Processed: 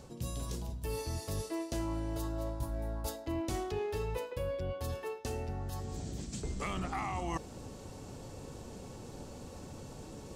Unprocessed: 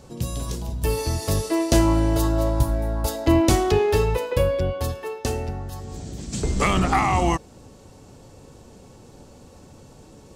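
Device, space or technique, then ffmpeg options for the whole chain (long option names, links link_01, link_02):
compression on the reversed sound: -af "areverse,acompressor=threshold=-37dB:ratio=4,areverse"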